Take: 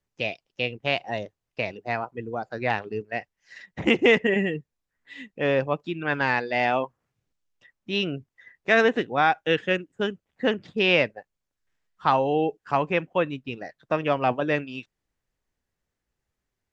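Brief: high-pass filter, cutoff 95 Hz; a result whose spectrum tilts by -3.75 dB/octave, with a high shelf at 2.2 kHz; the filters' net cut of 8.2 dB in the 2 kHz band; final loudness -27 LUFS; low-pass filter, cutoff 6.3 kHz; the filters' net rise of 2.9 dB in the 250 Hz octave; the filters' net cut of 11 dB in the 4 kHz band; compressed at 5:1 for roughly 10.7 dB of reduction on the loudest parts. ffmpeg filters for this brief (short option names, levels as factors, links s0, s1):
-af "highpass=95,lowpass=6300,equalizer=f=250:t=o:g=4,equalizer=f=2000:t=o:g=-4.5,highshelf=f=2200:g=-7.5,equalizer=f=4000:t=o:g=-6.5,acompressor=threshold=0.0501:ratio=5,volume=1.88"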